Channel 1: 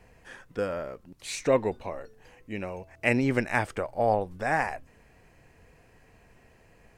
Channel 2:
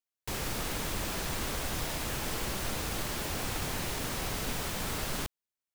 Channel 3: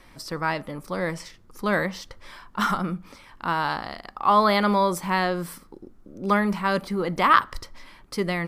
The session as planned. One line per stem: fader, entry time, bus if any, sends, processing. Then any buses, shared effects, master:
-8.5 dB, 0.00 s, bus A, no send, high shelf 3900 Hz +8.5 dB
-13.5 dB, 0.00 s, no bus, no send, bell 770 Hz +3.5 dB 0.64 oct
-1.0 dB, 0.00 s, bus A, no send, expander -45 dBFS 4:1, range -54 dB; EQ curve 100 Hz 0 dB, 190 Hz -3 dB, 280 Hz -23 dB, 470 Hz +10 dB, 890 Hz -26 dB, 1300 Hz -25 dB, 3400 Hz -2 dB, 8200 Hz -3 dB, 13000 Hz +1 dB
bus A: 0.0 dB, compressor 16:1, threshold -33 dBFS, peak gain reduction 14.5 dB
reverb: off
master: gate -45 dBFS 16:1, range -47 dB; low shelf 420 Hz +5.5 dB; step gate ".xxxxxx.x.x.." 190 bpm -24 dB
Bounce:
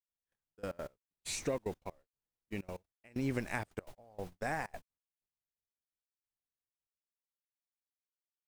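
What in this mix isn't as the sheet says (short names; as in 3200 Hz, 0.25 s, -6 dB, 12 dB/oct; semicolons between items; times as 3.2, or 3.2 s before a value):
stem 2 -13.5 dB -> -23.5 dB; stem 3: muted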